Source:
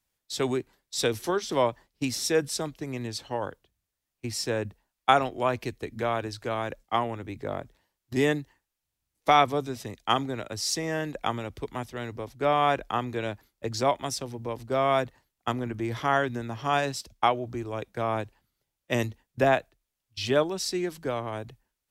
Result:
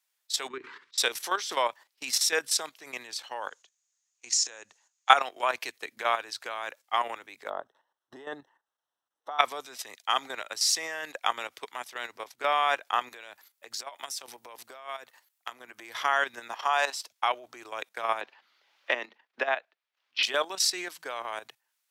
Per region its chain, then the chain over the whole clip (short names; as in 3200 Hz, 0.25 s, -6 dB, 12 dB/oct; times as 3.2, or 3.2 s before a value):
0.48–0.98 Chebyshev band-stop 410–1100 Hz + tape spacing loss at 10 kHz 37 dB + sustainer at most 100 dB/s
3.48–5.1 compressor 10:1, threshold -35 dBFS + synth low-pass 6700 Hz, resonance Q 8.9
7.5–9.39 running mean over 19 samples + negative-ratio compressor -29 dBFS
13.09–15.94 compressor 16:1, threshold -34 dBFS + high shelf 10000 Hz +8.5 dB
16.53–17.09 HPF 290 Hz 24 dB/oct + bell 870 Hz +6.5 dB 1.1 oct
18.21–20.23 HPF 200 Hz 24 dB/oct + air absorption 270 m + three-band squash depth 100%
whole clip: HPF 1000 Hz 12 dB/oct; level quantiser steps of 11 dB; gain +8.5 dB